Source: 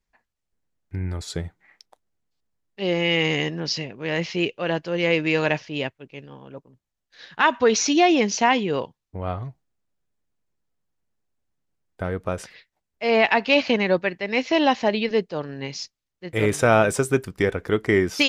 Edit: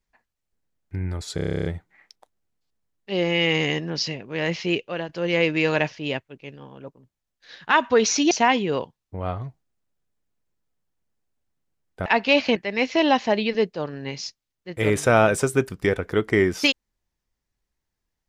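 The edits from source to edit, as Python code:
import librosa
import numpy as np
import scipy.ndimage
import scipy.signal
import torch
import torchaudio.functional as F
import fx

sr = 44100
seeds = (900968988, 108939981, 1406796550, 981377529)

y = fx.edit(x, sr, fx.stutter(start_s=1.35, slice_s=0.03, count=11),
    fx.fade_out_to(start_s=4.42, length_s=0.37, curve='qsin', floor_db=-11.0),
    fx.cut(start_s=8.01, length_s=0.31),
    fx.cut(start_s=12.07, length_s=1.2),
    fx.cut(start_s=13.77, length_s=0.35), tone=tone)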